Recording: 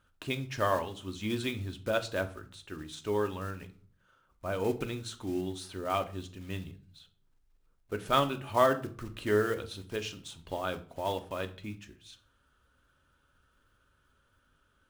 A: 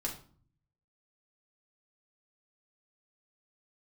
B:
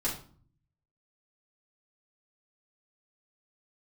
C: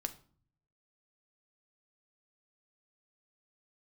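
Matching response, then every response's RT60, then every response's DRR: C; 0.45, 0.45, 0.45 s; -2.0, -8.0, 7.5 dB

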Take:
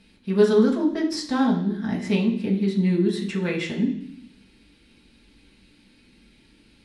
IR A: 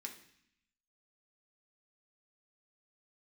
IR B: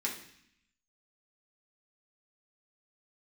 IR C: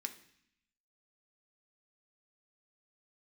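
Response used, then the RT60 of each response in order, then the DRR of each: B; 0.65, 0.65, 0.65 s; 1.0, -3.5, 5.5 dB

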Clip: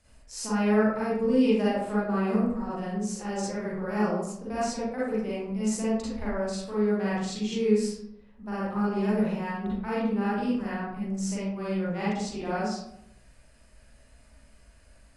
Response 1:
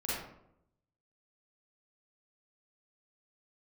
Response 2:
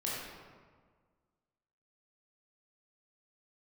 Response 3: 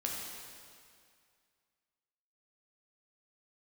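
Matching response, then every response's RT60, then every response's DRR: 1; 0.75, 1.6, 2.2 s; -9.5, -6.5, -2.0 dB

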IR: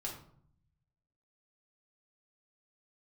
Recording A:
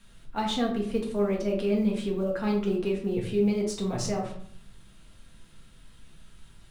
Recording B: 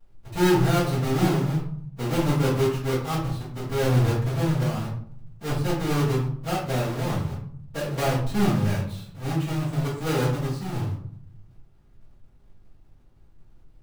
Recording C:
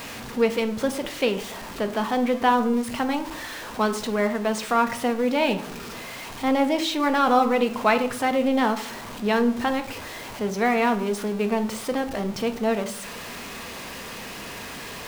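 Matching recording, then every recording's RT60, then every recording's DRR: A; 0.60, 0.60, 0.60 s; -2.5, -12.5, 7.0 dB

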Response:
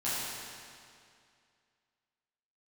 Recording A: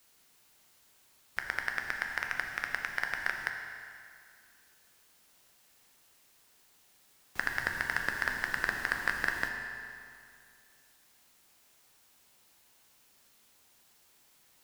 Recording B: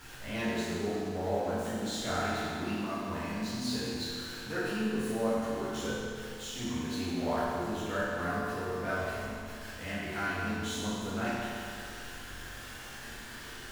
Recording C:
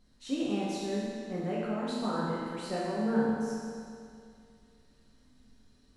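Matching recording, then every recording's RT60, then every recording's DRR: B; 2.3, 2.3, 2.3 s; 2.5, -12.0, -7.0 dB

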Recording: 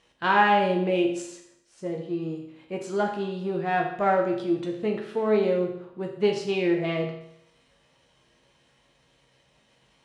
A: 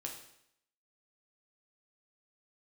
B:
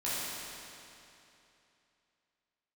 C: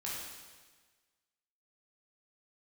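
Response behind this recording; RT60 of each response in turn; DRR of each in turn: A; 0.75, 2.9, 1.4 s; 0.5, -11.0, -6.5 dB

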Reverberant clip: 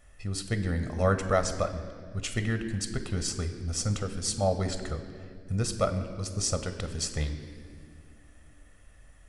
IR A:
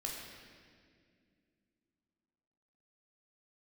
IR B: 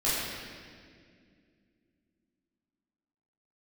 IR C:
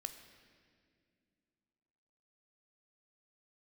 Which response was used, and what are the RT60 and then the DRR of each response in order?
C; 2.1, 2.1, 2.2 s; -2.0, -11.0, 8.0 dB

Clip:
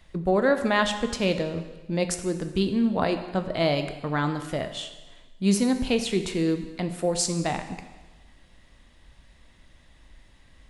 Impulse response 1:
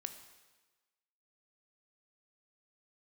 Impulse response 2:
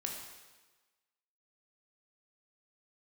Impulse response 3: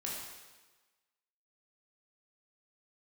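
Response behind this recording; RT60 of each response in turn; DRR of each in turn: 1; 1.3, 1.3, 1.3 s; 8.0, 0.0, -4.5 dB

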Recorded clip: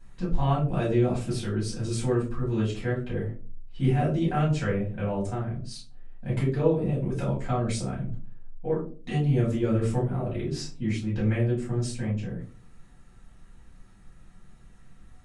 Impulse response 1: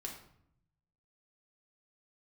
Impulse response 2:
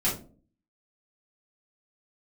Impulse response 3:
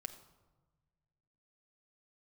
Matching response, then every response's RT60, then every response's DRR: 2; 0.70, 0.40, 1.3 s; -1.0, -8.5, 6.5 dB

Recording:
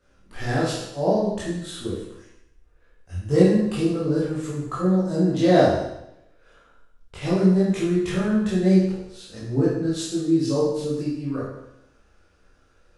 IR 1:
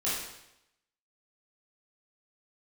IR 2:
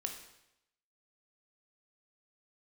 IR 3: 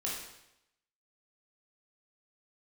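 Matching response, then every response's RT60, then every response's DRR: 1; 0.85, 0.85, 0.85 s; -9.0, 3.5, -4.5 dB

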